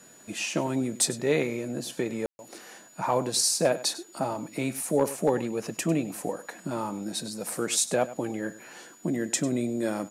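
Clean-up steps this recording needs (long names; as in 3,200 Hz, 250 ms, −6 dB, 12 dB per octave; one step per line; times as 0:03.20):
clipped peaks rebuilt −13.5 dBFS
notch filter 6,900 Hz, Q 30
ambience match 0:02.26–0:02.39
echo removal 99 ms −16 dB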